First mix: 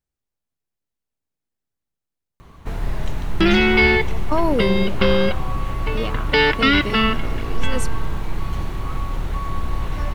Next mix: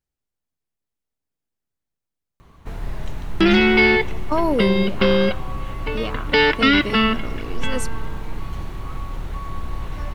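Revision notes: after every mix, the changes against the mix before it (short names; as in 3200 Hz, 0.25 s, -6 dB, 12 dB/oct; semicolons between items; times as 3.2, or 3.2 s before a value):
first sound -4.5 dB; second sound: add resonant low shelf 150 Hz -8 dB, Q 1.5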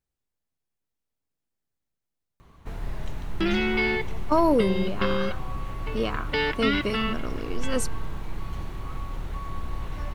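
first sound -4.0 dB; second sound -10.0 dB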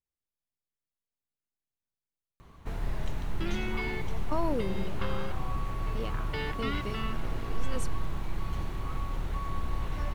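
speech -11.0 dB; second sound -11.0 dB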